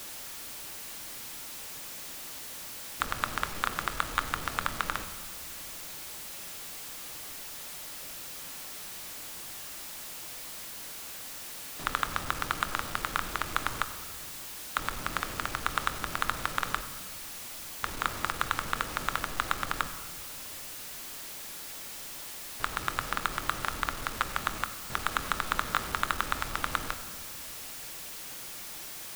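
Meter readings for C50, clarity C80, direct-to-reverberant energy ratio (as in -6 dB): 11.5 dB, 13.0 dB, 9.5 dB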